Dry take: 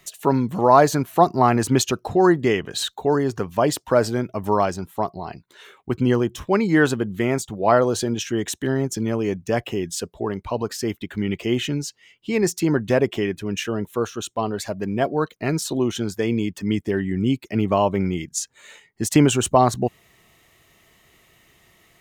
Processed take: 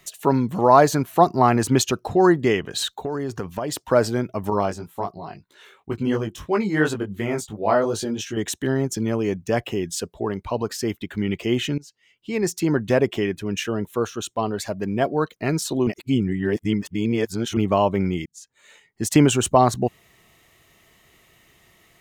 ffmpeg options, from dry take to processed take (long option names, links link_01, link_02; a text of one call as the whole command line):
ffmpeg -i in.wav -filter_complex "[0:a]asettb=1/sr,asplit=3[link_01][link_02][link_03];[link_01]atrim=end=2.964[link_04];[link_02]atrim=start=2.96:end=3.91,asetpts=PTS-STARTPTS,afade=type=in:duration=0.004:curve=qsin,afade=type=out:start_time=0.946:duration=0.004:curve=qsin,acompressor=threshold=-22dB:ratio=12:attack=3.2:release=140:knee=1:detection=peak[link_05];[link_03]atrim=start=3.906[link_06];[link_04][link_05]acrossfade=duration=0.004:curve1=hsin:curve2=qsin[link_07];[link_07][link_06]acrossfade=duration=0.004:curve1=qsin:curve2=hsin,asettb=1/sr,asplit=3[link_08][link_09][link_10];[link_08]atrim=end=4.504[link_11];[link_09]atrim=start=4.5:end=8.37,asetpts=PTS-STARTPTS,afade=type=in:duration=0.004:curve=qsin,afade=type=out:start_time=3.866:duration=0.004:curve=qsin,flanger=delay=18:depth=2.9:speed=2.9[link_12];[link_10]atrim=start=8.366[link_13];[link_11][link_12]acrossfade=duration=0.004:curve1=hsin:curve2=qsin[link_14];[link_14][link_13]acrossfade=duration=0.004:curve1=qsin:curve2=hsin,asplit=5[link_15][link_16][link_17][link_18][link_19];[link_15]atrim=end=11.78,asetpts=PTS-STARTPTS,afade=type=out:start_time=11.776:duration=0.004:curve=hsin:silence=0.1[link_20];[link_16]atrim=start=11.78:end=15.872,asetpts=PTS-STARTPTS,afade=type=in:duration=1.31:curve=qsin:silence=0.1[link_21];[link_17]atrim=start=15.868:end=17.572,asetpts=PTS-STARTPTS,areverse[link_22];[link_18]atrim=start=17.568:end=18.26,asetpts=PTS-STARTPTS,afade=type=out:start_time=0.688:duration=0.004:curve=hsin[link_23];[link_19]atrim=start=18.26,asetpts=PTS-STARTPTS,afade=type=in:duration=0.87[link_24];[link_20][link_21]concat=n=2:v=0:a=1[link_25];[link_25][link_22]acrossfade=duration=0.004:curve1=hsin:curve2=hsin[link_26];[link_23][link_24]concat=n=2:v=0:a=1[link_27];[link_26][link_27]acrossfade=duration=0.004:curve1=hsin:curve2=hsin" out.wav